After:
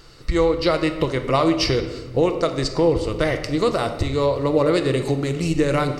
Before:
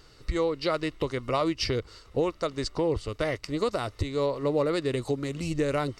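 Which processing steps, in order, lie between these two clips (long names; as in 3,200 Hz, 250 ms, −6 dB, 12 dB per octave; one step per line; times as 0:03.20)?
rectangular room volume 880 cubic metres, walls mixed, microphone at 0.75 metres
level +7 dB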